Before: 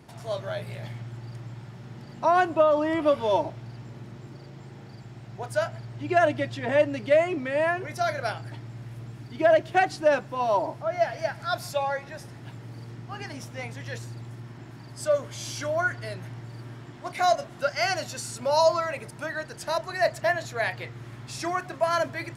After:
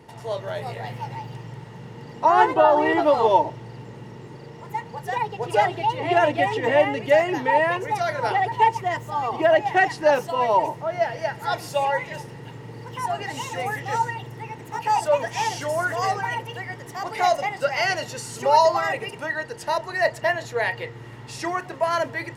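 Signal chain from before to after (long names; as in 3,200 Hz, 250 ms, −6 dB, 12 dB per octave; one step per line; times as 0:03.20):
delay with pitch and tempo change per echo 403 ms, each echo +3 semitones, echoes 2, each echo −6 dB
hollow resonant body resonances 470/890/1,900/2,800 Hz, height 12 dB, ringing for 35 ms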